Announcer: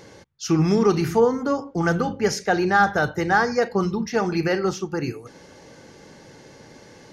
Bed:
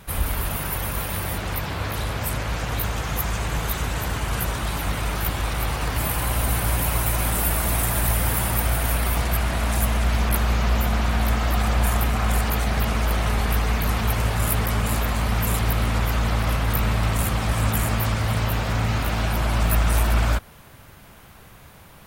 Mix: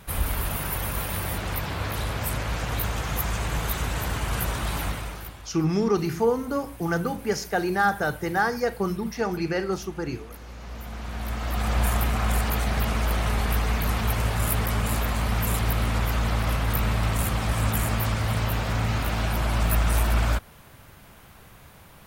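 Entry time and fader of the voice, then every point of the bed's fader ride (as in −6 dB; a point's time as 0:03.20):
5.05 s, −4.5 dB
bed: 0:04.83 −2 dB
0:05.54 −22 dB
0:10.43 −22 dB
0:11.78 −2.5 dB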